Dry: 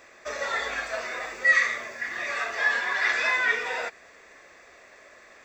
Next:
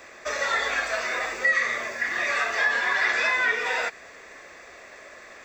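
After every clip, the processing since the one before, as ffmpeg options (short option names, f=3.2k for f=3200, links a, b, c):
-filter_complex "[0:a]acrossover=split=270|1000[a][b][c];[a]acompressor=threshold=-56dB:ratio=4[d];[b]acompressor=threshold=-38dB:ratio=4[e];[c]acompressor=threshold=-28dB:ratio=4[f];[d][e][f]amix=inputs=3:normalize=0,volume=6dB"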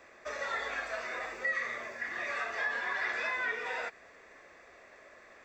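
-af "highshelf=f=3.2k:g=-8.5,volume=-8.5dB"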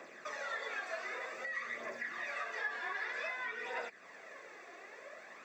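-af "acompressor=threshold=-48dB:ratio=2,highpass=f=150:w=0.5412,highpass=f=150:w=1.3066,aphaser=in_gain=1:out_gain=1:delay=2.9:decay=0.46:speed=0.53:type=triangular,volume=2.5dB"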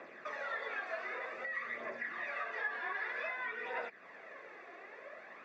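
-af "lowpass=2.9k,volume=1dB"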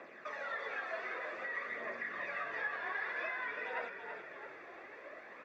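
-filter_complex "[0:a]asplit=7[a][b][c][d][e][f][g];[b]adelay=332,afreqshift=-46,volume=-7dB[h];[c]adelay=664,afreqshift=-92,volume=-13.2dB[i];[d]adelay=996,afreqshift=-138,volume=-19.4dB[j];[e]adelay=1328,afreqshift=-184,volume=-25.6dB[k];[f]adelay=1660,afreqshift=-230,volume=-31.8dB[l];[g]adelay=1992,afreqshift=-276,volume=-38dB[m];[a][h][i][j][k][l][m]amix=inputs=7:normalize=0,volume=-1dB"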